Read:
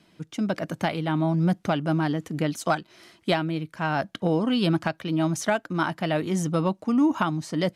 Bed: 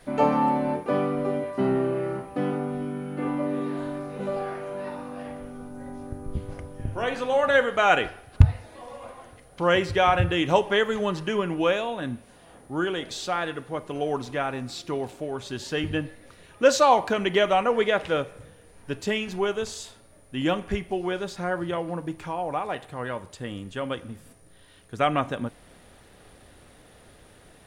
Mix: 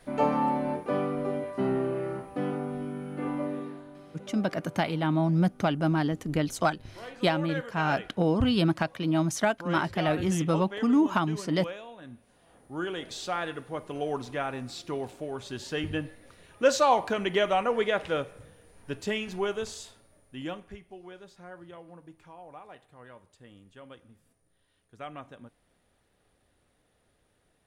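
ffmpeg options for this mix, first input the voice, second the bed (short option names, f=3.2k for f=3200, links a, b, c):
-filter_complex "[0:a]adelay=3950,volume=-1.5dB[a];[1:a]volume=7.5dB,afade=t=out:st=3.43:d=0.4:silence=0.266073,afade=t=in:st=12.04:d=1.19:silence=0.266073,afade=t=out:st=19.7:d=1.07:silence=0.199526[b];[a][b]amix=inputs=2:normalize=0"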